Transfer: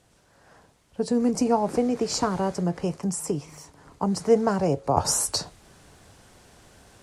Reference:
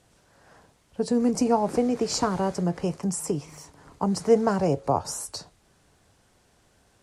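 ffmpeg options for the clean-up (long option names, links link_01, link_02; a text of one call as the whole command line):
ffmpeg -i in.wav -af "asetnsamples=nb_out_samples=441:pad=0,asendcmd='4.97 volume volume -9.5dB',volume=0dB" out.wav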